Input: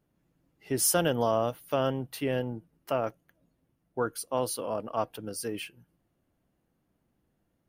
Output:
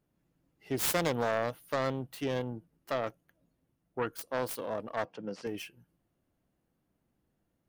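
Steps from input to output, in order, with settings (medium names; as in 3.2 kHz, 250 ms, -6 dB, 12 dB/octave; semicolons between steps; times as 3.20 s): self-modulated delay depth 0.29 ms; 5.05–5.47 s: cabinet simulation 160–5800 Hz, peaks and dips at 190 Hz +9 dB, 530 Hz +5 dB, 990 Hz +4 dB, 3.7 kHz -7 dB; trim -3 dB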